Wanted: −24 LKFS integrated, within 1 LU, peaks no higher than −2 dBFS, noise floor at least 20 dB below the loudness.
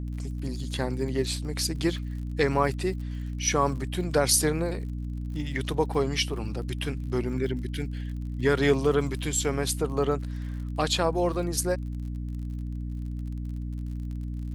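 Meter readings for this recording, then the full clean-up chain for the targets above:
crackle rate 50 per second; mains hum 60 Hz; hum harmonics up to 300 Hz; level of the hum −30 dBFS; integrated loudness −28.5 LKFS; sample peak −9.0 dBFS; target loudness −24.0 LKFS
→ click removal
mains-hum notches 60/120/180/240/300 Hz
level +4.5 dB

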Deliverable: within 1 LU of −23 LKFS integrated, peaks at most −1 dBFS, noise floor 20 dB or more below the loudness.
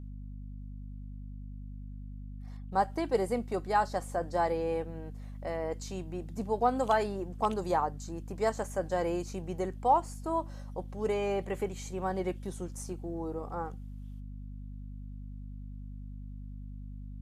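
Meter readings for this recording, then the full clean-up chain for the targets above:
mains hum 50 Hz; hum harmonics up to 250 Hz; level of the hum −40 dBFS; integrated loudness −33.0 LKFS; sample peak −13.5 dBFS; target loudness −23.0 LKFS
→ hum removal 50 Hz, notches 5
level +10 dB

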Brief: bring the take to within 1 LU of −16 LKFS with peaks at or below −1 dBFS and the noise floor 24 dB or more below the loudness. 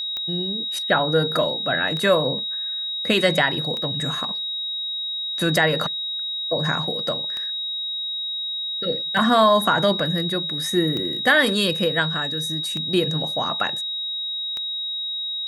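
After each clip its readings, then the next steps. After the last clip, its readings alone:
number of clicks 9; interfering tone 3,800 Hz; level of the tone −25 dBFS; integrated loudness −21.5 LKFS; sample peak −5.5 dBFS; target loudness −16.0 LKFS
→ click removal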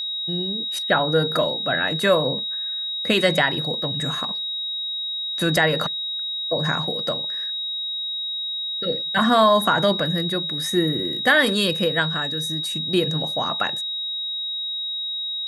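number of clicks 0; interfering tone 3,800 Hz; level of the tone −25 dBFS
→ notch filter 3,800 Hz, Q 30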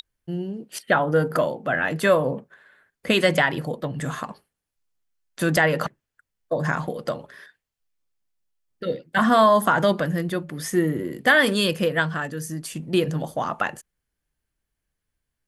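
interfering tone none found; integrated loudness −23.0 LKFS; sample peak −6.0 dBFS; target loudness −16.0 LKFS
→ level +7 dB
brickwall limiter −1 dBFS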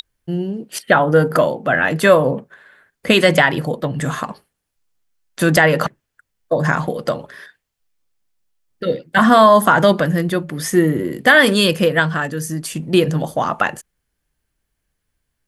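integrated loudness −16.0 LKFS; sample peak −1.0 dBFS; background noise floor −76 dBFS

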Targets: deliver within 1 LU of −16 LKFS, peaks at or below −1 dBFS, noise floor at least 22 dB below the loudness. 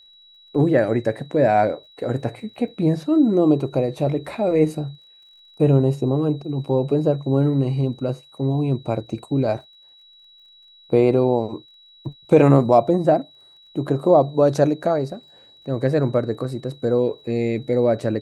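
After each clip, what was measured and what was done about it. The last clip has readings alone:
crackle rate 33 per second; interfering tone 3,900 Hz; level of the tone −48 dBFS; integrated loudness −20.5 LKFS; sample peak −2.0 dBFS; target loudness −16.0 LKFS
→ click removal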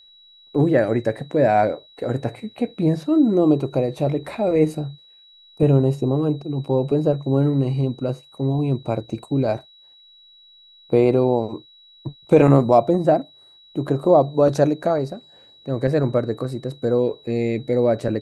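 crackle rate 0 per second; interfering tone 3,900 Hz; level of the tone −48 dBFS
→ notch filter 3,900 Hz, Q 30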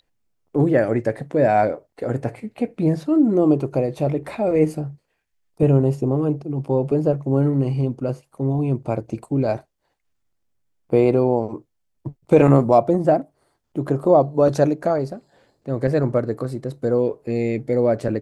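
interfering tone none found; integrated loudness −20.5 LKFS; sample peak −2.0 dBFS; target loudness −16.0 LKFS
→ level +4.5 dB
brickwall limiter −1 dBFS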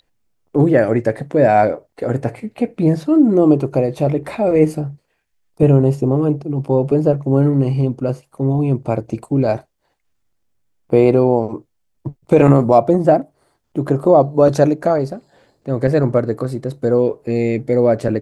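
integrated loudness −16.0 LKFS; sample peak −1.0 dBFS; background noise floor −68 dBFS

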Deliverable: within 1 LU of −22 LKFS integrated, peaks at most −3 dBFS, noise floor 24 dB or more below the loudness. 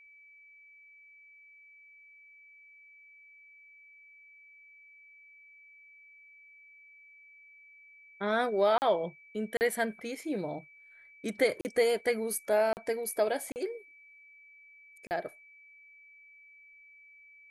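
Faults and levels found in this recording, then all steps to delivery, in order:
number of dropouts 6; longest dropout 39 ms; interfering tone 2,300 Hz; level of the tone −54 dBFS; integrated loudness −31.0 LKFS; sample peak −14.5 dBFS; target loudness −22.0 LKFS
→ repair the gap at 0:08.78/0:09.57/0:11.61/0:12.73/0:13.52/0:15.07, 39 ms
notch filter 2,300 Hz, Q 30
level +9 dB

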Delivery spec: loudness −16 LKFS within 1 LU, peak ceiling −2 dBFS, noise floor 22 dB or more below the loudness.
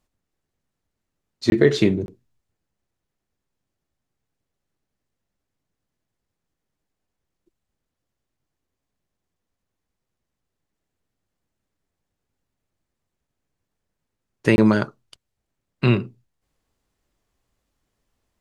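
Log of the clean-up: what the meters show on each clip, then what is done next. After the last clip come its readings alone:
number of dropouts 3; longest dropout 21 ms; integrated loudness −20.0 LKFS; sample peak −3.0 dBFS; target loudness −16.0 LKFS
→ repair the gap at 0:01.50/0:02.06/0:14.56, 21 ms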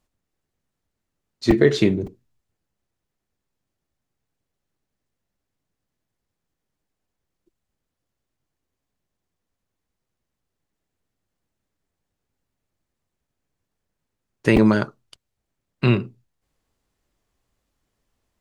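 number of dropouts 0; integrated loudness −20.0 LKFS; sample peak −3.0 dBFS; target loudness −16.0 LKFS
→ level +4 dB
brickwall limiter −2 dBFS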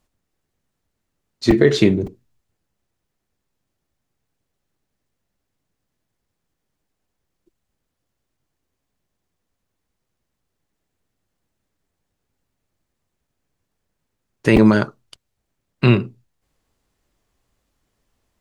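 integrated loudness −16.5 LKFS; sample peak −2.0 dBFS; background noise floor −78 dBFS

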